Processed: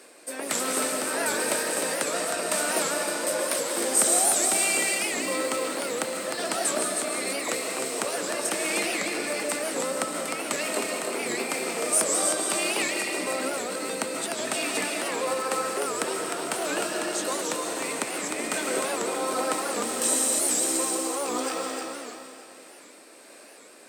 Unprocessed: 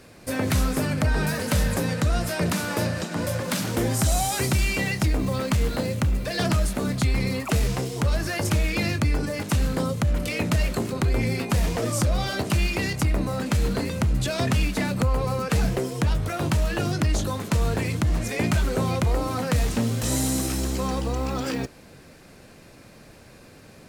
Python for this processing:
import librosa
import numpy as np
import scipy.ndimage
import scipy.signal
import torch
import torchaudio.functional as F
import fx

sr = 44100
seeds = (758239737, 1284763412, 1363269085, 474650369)

y = scipy.signal.sosfilt(scipy.signal.butter(4, 310.0, 'highpass', fs=sr, output='sos'), x)
y = fx.peak_eq(y, sr, hz=8400.0, db=14.5, octaves=0.22)
y = fx.over_compress(y, sr, threshold_db=-34.0, ratio=-1.0, at=(13.39, 13.8), fade=0.02)
y = y * (1.0 - 0.56 / 2.0 + 0.56 / 2.0 * np.cos(2.0 * np.pi * 1.5 * (np.arange(len(y)) / sr)))
y = fx.echo_feedback(y, sr, ms=306, feedback_pct=40, wet_db=-5)
y = fx.rev_freeverb(y, sr, rt60_s=1.3, hf_ratio=0.95, predelay_ms=105, drr_db=1.5)
y = fx.record_warp(y, sr, rpm=78.0, depth_cents=160.0)